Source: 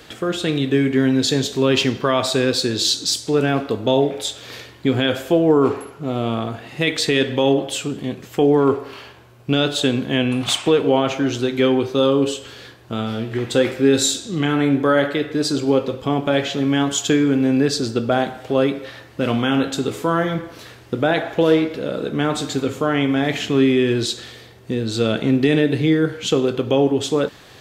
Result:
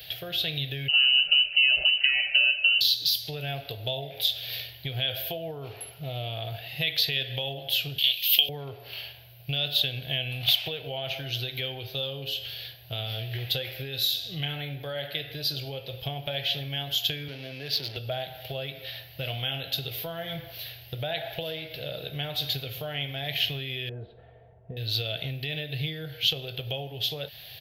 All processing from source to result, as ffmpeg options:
ffmpeg -i in.wav -filter_complex "[0:a]asettb=1/sr,asplit=3[link_01][link_02][link_03];[link_01]atrim=end=0.884[link_04];[link_02]atrim=start=0.88:end=2.81,asetpts=PTS-STARTPTS,afade=type=in:duration=0.004:curve=qsin,afade=type=out:start_time=1.926:duration=0.004:curve=qsin,lowpass=frequency=2600:width_type=q:width=0.5098,lowpass=frequency=2600:width_type=q:width=0.6013,lowpass=frequency=2600:width_type=q:width=0.9,lowpass=frequency=2600:width_type=q:width=2.563,afreqshift=-3100,aecho=1:1:5.1:0.91,atrim=end_sample=85113[link_05];[link_03]atrim=start=2.806[link_06];[link_04][link_05]acrossfade=duration=0.004:curve1=hsin:curve2=qsin[link_07];[link_07][link_06]acrossfade=duration=0.004:curve1=qsin:curve2=hsin,asettb=1/sr,asplit=3[link_08][link_09][link_10];[link_08]atrim=end=7.984[link_11];[link_09]atrim=start=7.98:end=8.49,asetpts=PTS-STARTPTS,afade=type=in:duration=0.004:curve=qsin,afade=type=out:start_time=0.506:duration=0.004:curve=qsin,highpass=frequency=1300:poles=1,highshelf=frequency=2100:width_type=q:width=3:gain=12.5,asoftclip=type=hard:threshold=-8.5dB[link_12];[link_10]atrim=start=8.486[link_13];[link_11][link_12]acrossfade=duration=0.004:curve1=hsin:curve2=qsin[link_14];[link_14][link_13]acrossfade=duration=0.004:curve1=qsin:curve2=hsin,asettb=1/sr,asplit=3[link_15][link_16][link_17];[link_15]atrim=end=17.284[link_18];[link_16]atrim=start=17.28:end=17.97,asetpts=PTS-STARTPTS,afade=type=in:duration=0.004:curve=qsin,afade=type=out:start_time=0.686:duration=0.004:curve=qsin,aeval=exprs='val(0)+0.5*0.0447*sgn(val(0))':channel_layout=same,adynamicsmooth=sensitivity=5:basefreq=990,highpass=180,lowpass=7900[link_19];[link_17]atrim=start=17.966[link_20];[link_18][link_19]acrossfade=duration=0.004:curve1=hsin:curve2=qsin[link_21];[link_21][link_20]acrossfade=duration=0.004:curve1=qsin:curve2=hsin,asettb=1/sr,asplit=3[link_22][link_23][link_24];[link_22]atrim=end=23.894[link_25];[link_23]atrim=start=23.89:end=24.77,asetpts=PTS-STARTPTS,afade=type=in:duration=0.004:curve=qsin,afade=type=out:start_time=0.876:duration=0.004:curve=qsin,lowpass=frequency=1100:width=0.5412,lowpass=frequency=1100:width=1.3066,aecho=1:1:4.4:0.53,atrim=end_sample=38808[link_26];[link_24]atrim=start=24.766[link_27];[link_25][link_26]acrossfade=duration=0.004:curve1=hsin:curve2=qsin[link_28];[link_28][link_27]acrossfade=duration=0.004:curve1=qsin:curve2=hsin,lowshelf=frequency=80:gain=-7.5,acompressor=threshold=-22dB:ratio=5,firequalizer=gain_entry='entry(140,0);entry(220,-26);entry(660,-3);entry(1100,-22);entry(1600,-9);entry(2900,5);entry(4500,3);entry(7800,-24);entry(12000,15)':delay=0.05:min_phase=1" out.wav

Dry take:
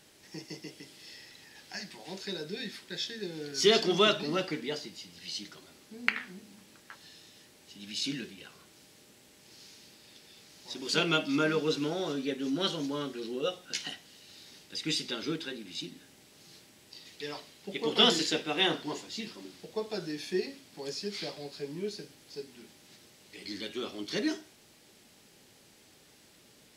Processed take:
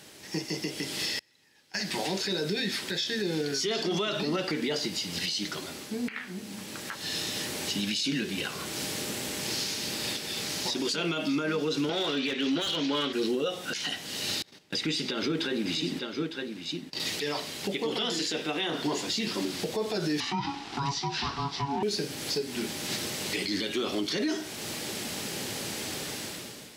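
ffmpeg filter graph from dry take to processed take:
ffmpeg -i in.wav -filter_complex "[0:a]asettb=1/sr,asplit=3[link_01][link_02][link_03];[link_01]atrim=end=1.194[link_04];[link_02]atrim=start=1.19:end=1.81,asetpts=PTS-STARTPTS,afade=type=in:duration=0.004:curve=qsin,afade=type=out:start_time=0.616:duration=0.004:curve=qsin,bandreject=frequency=700:width=8,agate=range=-34dB:threshold=-42dB:ratio=16:release=100:detection=peak[link_05];[link_03]atrim=start=1.806[link_06];[link_04][link_05]acrossfade=duration=0.004:curve1=hsin:curve2=qsin[link_07];[link_07][link_06]acrossfade=duration=0.004:curve1=qsin:curve2=hsin,asettb=1/sr,asplit=3[link_08][link_09][link_10];[link_08]atrim=end=11.894[link_11];[link_09]atrim=start=11.89:end=13.13,asetpts=PTS-STARTPTS,afade=type=in:duration=0.004:curve=qsin,afade=type=out:start_time=1.236:duration=0.004:curve=qsin,highpass=150,lowpass=4500,equalizer=frequency=2900:width_type=o:width=2.1:gain=12.5,aeval=exprs='clip(val(0),-1,0.0473)':channel_layout=same[link_12];[link_10]atrim=start=13.126[link_13];[link_11][link_12]acrossfade=duration=0.004:curve1=hsin:curve2=qsin[link_14];[link_14][link_13]acrossfade=duration=0.004:curve1=qsin:curve2=hsin,asettb=1/sr,asplit=3[link_15][link_16][link_17];[link_15]atrim=end=14.424[link_18];[link_16]atrim=start=14.42:end=17,asetpts=PTS-STARTPTS,afade=type=in:duration=0.004:curve=qsin,afade=type=out:start_time=2.576:duration=0.004:curve=qsin,equalizer=frequency=12000:width_type=o:width=2.2:gain=-8.5,agate=range=-27dB:threshold=-54dB:ratio=16:release=100:detection=peak,aecho=1:1:907:0.133,atrim=end_sample=113778[link_19];[link_17]atrim=start=16.996[link_20];[link_18][link_19]acrossfade=duration=0.004:curve1=hsin:curve2=qsin[link_21];[link_21][link_20]acrossfade=duration=0.004:curve1=qsin:curve2=hsin,asettb=1/sr,asplit=3[link_22][link_23][link_24];[link_22]atrim=end=20.204[link_25];[link_23]atrim=start=20.2:end=21.83,asetpts=PTS-STARTPTS,afade=type=in:duration=0.004:curve=qsin,afade=type=out:start_time=1.626:duration=0.004:curve=qsin,highpass=130,lowpass=4200,aeval=exprs='val(0)*sin(2*PI*560*n/s)':channel_layout=same[link_26];[link_24]atrim=start=21.826[link_27];[link_25][link_26]acrossfade=duration=0.004:curve1=hsin:curve2=qsin[link_28];[link_28][link_27]acrossfade=duration=0.004:curve1=qsin:curve2=hsin,highpass=70,dynaudnorm=framelen=260:gausssize=5:maxgain=15.5dB,alimiter=level_in=6dB:limit=-24dB:level=0:latency=1:release=349,volume=-6dB,volume=9dB" out.wav

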